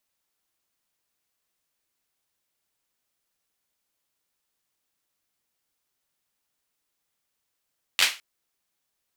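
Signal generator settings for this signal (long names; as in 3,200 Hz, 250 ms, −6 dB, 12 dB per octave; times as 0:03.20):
synth clap length 0.21 s, apart 11 ms, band 2,700 Hz, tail 0.29 s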